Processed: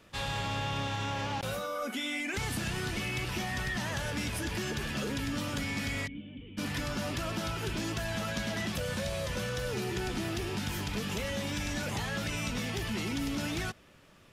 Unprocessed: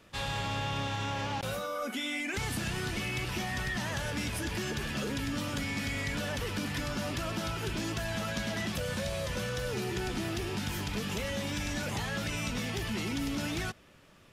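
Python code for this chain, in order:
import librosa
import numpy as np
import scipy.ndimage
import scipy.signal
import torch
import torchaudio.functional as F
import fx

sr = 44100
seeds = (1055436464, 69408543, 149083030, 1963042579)

y = fx.formant_cascade(x, sr, vowel='i', at=(6.06, 6.57), fade=0.02)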